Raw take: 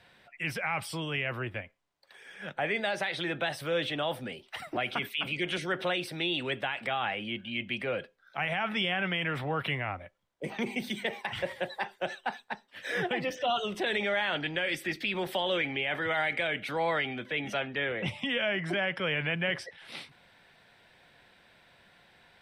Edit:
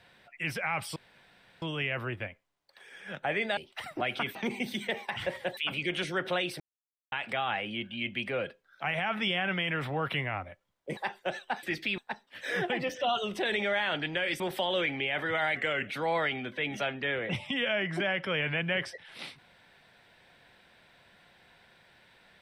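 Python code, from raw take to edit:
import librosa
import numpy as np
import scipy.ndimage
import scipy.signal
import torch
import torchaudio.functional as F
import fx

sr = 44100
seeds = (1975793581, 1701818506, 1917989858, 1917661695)

y = fx.edit(x, sr, fx.insert_room_tone(at_s=0.96, length_s=0.66),
    fx.cut(start_s=2.91, length_s=1.42),
    fx.silence(start_s=6.14, length_s=0.52),
    fx.move(start_s=10.51, length_s=1.22, to_s=5.11),
    fx.move(start_s=14.81, length_s=0.35, to_s=12.39),
    fx.speed_span(start_s=16.32, length_s=0.29, speed=0.91), tone=tone)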